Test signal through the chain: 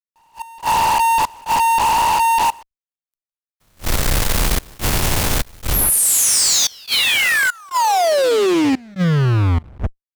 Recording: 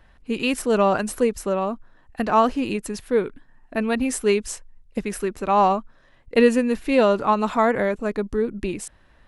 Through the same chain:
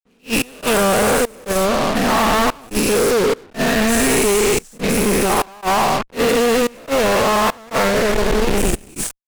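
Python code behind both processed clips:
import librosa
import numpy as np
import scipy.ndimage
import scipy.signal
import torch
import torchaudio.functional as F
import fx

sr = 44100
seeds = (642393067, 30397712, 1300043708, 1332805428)

y = fx.spec_dilate(x, sr, span_ms=480)
y = fx.high_shelf(y, sr, hz=8300.0, db=3.0)
y = fx.rider(y, sr, range_db=4, speed_s=2.0)
y = fx.low_shelf(y, sr, hz=90.0, db=9.5)
y = fx.fuzz(y, sr, gain_db=29.0, gate_db=-23.0)
y = fx.step_gate(y, sr, bpm=72, pattern='xx.xxx.xxx', floor_db=-24.0, edge_ms=4.5)
y = fx.attack_slew(y, sr, db_per_s=350.0)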